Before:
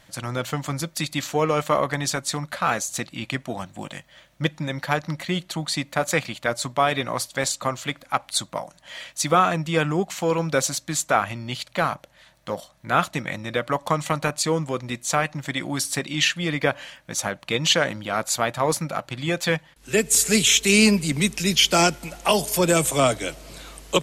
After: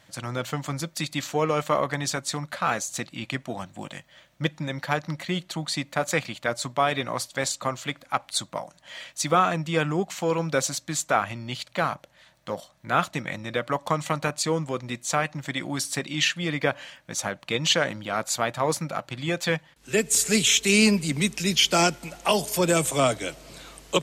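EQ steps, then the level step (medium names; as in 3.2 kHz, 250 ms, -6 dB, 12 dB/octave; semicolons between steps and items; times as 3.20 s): high-pass 62 Hz; peaking EQ 11 kHz -5 dB 0.31 oct; -2.5 dB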